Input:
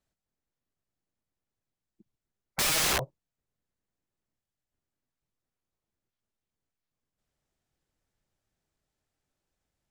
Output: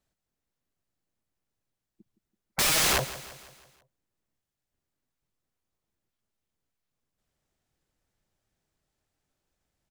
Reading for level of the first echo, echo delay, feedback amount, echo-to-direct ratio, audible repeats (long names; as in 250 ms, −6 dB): −15.5 dB, 166 ms, 50%, −14.0 dB, 4